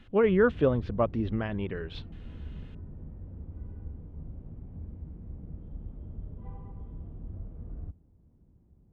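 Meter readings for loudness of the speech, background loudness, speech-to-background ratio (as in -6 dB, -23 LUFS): -27.5 LUFS, -44.0 LUFS, 16.5 dB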